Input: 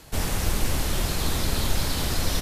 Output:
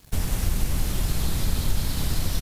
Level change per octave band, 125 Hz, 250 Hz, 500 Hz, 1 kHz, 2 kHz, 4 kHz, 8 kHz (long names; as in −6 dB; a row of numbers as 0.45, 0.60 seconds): +1.5, −1.0, −6.0, −6.0, −5.5, −4.5, −3.0 decibels